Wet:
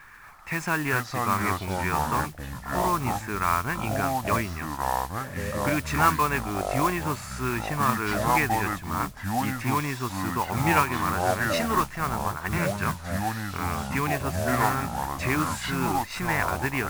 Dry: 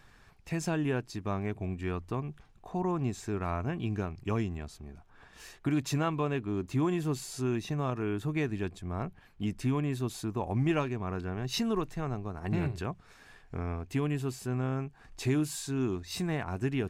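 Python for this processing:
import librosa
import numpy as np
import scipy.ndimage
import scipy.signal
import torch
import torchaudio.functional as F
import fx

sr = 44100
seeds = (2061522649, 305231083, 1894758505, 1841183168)

y = fx.band_shelf(x, sr, hz=1500.0, db=14.5, octaves=1.7)
y = fx.mod_noise(y, sr, seeds[0], snr_db=14)
y = fx.echo_pitch(y, sr, ms=237, semitones=-5, count=2, db_per_echo=-3.0)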